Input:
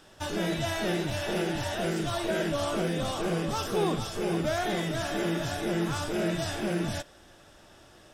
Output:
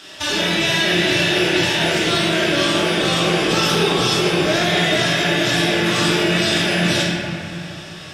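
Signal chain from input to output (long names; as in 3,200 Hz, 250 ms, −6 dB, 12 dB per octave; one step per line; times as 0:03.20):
meter weighting curve D
in parallel at −2 dB: compressor whose output falls as the input rises −31 dBFS, ratio −0.5
on the sum: convolution reverb RT60 2.4 s, pre-delay 3 ms, DRR −6.5 dB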